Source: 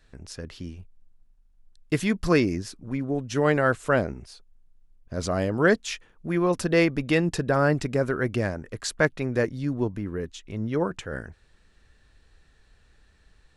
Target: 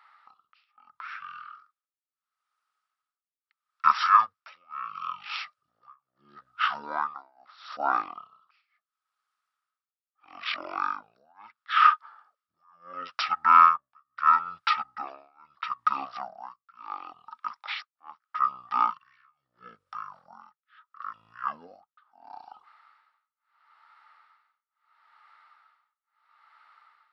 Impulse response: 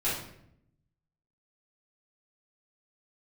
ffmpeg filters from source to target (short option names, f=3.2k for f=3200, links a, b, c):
-af "tremolo=f=1.5:d=0.99,highpass=f=2.5k:t=q:w=10,asetrate=22050,aresample=44100,volume=2.5dB"